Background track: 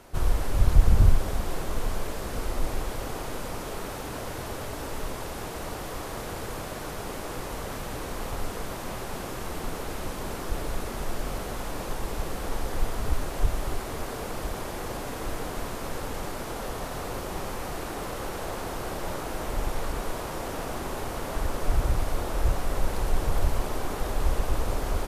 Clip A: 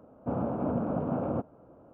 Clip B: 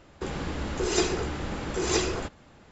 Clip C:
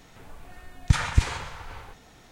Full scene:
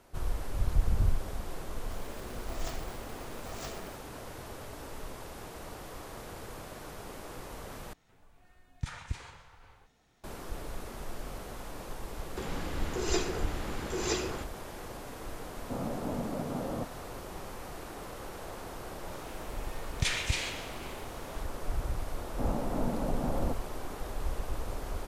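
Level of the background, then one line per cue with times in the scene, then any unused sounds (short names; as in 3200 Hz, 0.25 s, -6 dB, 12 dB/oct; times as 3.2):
background track -9 dB
1.69 add B -17.5 dB + polarity switched at an audio rate 300 Hz
7.93 replace with C -16 dB
12.16 add B -6 dB + mismatched tape noise reduction encoder only
15.43 add A -5.5 dB
19.12 add C -12 dB + resonant high shelf 1700 Hz +12 dB, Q 1.5
22.12 add A -4 dB + bell 860 Hz +4 dB 0.22 oct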